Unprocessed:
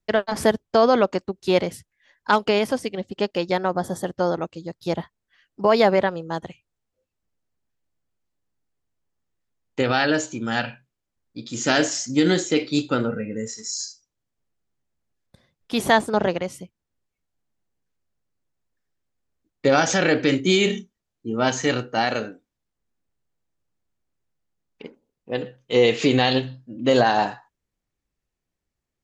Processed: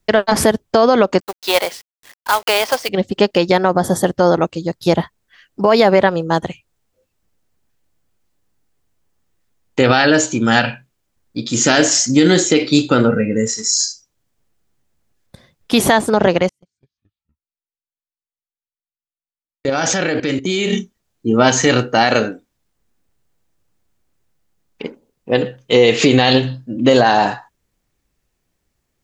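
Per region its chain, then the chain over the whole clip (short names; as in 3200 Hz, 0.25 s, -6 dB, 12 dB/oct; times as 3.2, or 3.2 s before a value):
1.2–2.89 Chebyshev band-pass 740–4900 Hz + companded quantiser 4-bit
16.49–20.73 gate -33 dBFS, range -38 dB + level quantiser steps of 15 dB + echoes that change speed 0.16 s, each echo -5 st, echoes 3, each echo -6 dB
whole clip: high shelf 9200 Hz +3.5 dB; compressor, threshold -18 dBFS; maximiser +13 dB; gain -1 dB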